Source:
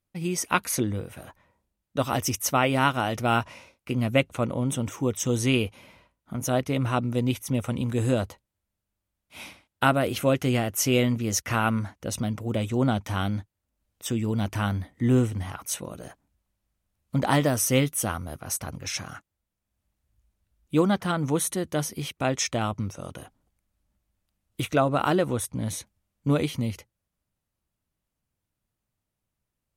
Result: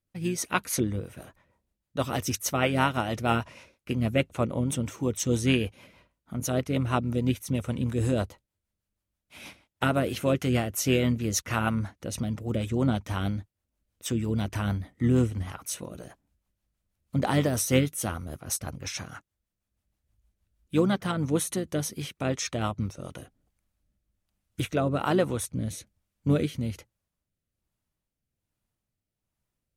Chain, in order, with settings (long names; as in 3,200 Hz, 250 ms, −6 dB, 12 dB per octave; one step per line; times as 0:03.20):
rotating-speaker cabinet horn 6.3 Hz, later 1.2 Hz, at 0:22.52
pitch-shifted copies added −7 semitones −14 dB